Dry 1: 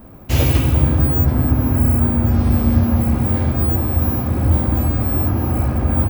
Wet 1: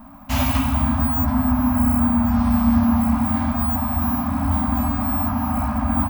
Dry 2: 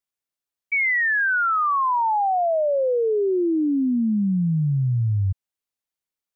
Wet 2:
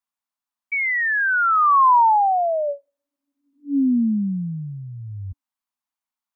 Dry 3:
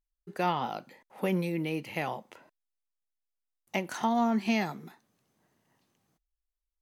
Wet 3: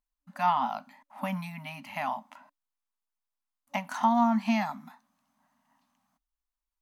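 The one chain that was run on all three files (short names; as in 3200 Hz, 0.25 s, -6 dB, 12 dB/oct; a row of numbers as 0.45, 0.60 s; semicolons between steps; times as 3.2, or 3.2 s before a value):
FFT band-reject 280–570 Hz; graphic EQ 125/250/500/1000 Hz -12/+9/-4/+11 dB; gain -3 dB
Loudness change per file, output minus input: -3.0, +2.5, +1.5 LU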